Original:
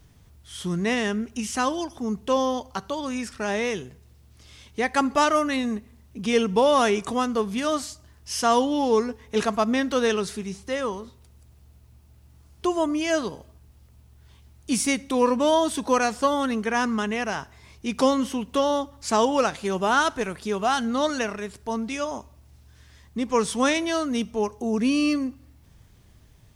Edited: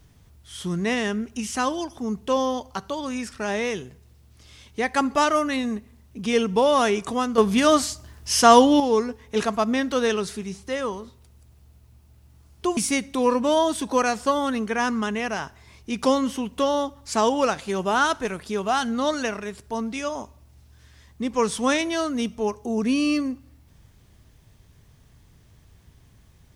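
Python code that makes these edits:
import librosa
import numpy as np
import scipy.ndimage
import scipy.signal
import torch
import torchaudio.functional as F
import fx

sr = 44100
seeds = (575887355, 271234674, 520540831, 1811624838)

y = fx.edit(x, sr, fx.clip_gain(start_s=7.38, length_s=1.42, db=7.5),
    fx.cut(start_s=12.77, length_s=1.96), tone=tone)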